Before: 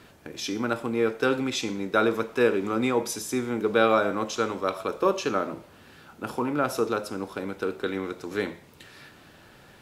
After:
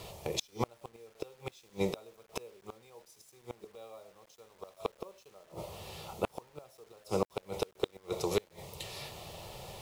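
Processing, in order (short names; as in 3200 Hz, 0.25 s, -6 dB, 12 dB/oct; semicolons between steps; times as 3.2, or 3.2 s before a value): fixed phaser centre 650 Hz, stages 4; flipped gate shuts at -26 dBFS, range -36 dB; bit-crush 12-bit; gain +9.5 dB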